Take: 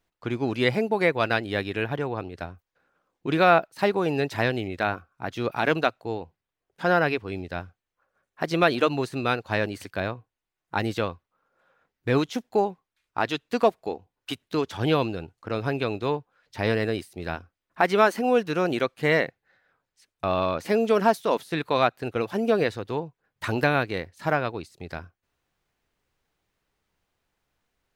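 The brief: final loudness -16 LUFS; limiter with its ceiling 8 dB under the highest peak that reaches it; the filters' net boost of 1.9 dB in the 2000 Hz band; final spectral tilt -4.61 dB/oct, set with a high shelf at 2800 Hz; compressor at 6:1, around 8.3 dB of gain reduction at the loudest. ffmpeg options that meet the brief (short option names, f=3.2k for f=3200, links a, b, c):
-af "equalizer=f=2k:t=o:g=4,highshelf=f=2.8k:g=-4,acompressor=threshold=-22dB:ratio=6,volume=15dB,alimiter=limit=-1.5dB:level=0:latency=1"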